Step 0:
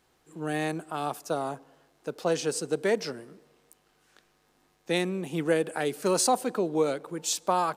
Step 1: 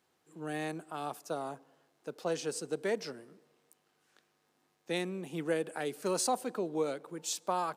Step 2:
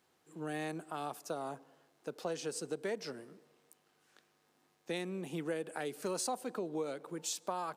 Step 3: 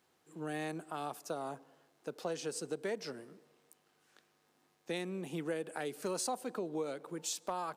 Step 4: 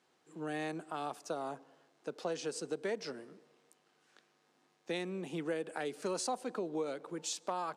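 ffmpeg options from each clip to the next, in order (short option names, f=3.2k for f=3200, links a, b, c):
-af "highpass=120,volume=-7dB"
-af "acompressor=threshold=-38dB:ratio=2.5,volume=1.5dB"
-af "volume=26.5dB,asoftclip=hard,volume=-26.5dB"
-af "highpass=150,lowpass=7.9k,volume=1dB"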